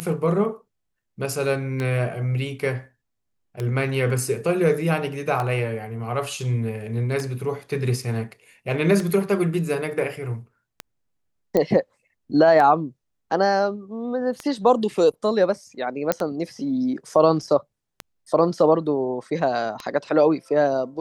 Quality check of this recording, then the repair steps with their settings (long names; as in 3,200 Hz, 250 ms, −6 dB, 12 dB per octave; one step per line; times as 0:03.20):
scratch tick 33 1/3 rpm −14 dBFS
0:11.57: click −9 dBFS
0:16.12: click −5 dBFS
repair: click removal